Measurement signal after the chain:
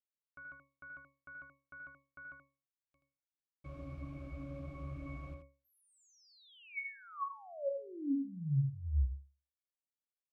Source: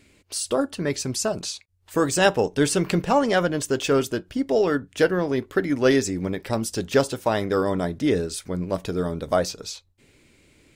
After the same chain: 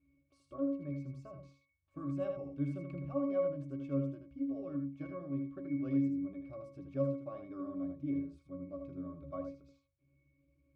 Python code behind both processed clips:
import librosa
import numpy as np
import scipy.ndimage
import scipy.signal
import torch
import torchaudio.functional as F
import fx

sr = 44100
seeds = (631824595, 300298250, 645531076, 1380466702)

p1 = fx.octave_resonator(x, sr, note='C#', decay_s=0.33)
p2 = p1 + fx.echo_single(p1, sr, ms=79, db=-6.5, dry=0)
y = p2 * librosa.db_to_amplitude(-4.5)